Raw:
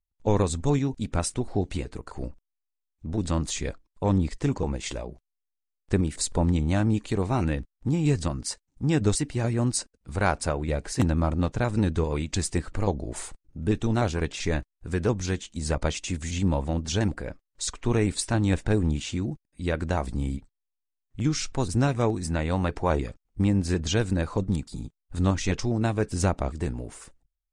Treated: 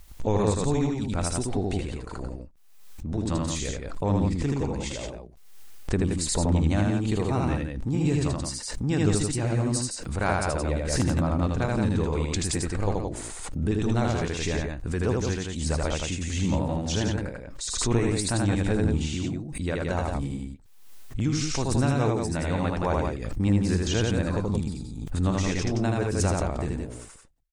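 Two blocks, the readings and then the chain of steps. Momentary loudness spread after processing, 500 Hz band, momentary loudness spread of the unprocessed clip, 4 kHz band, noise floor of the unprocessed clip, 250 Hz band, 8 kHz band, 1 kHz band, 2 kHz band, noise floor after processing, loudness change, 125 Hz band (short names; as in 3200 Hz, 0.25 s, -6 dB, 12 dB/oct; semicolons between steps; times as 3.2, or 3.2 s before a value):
9 LU, +0.5 dB, 10 LU, +1.5 dB, -83 dBFS, +0.5 dB, +1.5 dB, +0.5 dB, +0.5 dB, -45 dBFS, +0.5 dB, +0.5 dB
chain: loudspeakers at several distances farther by 27 m -2 dB, 59 m -5 dB; backwards sustainer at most 49 dB/s; gain -3 dB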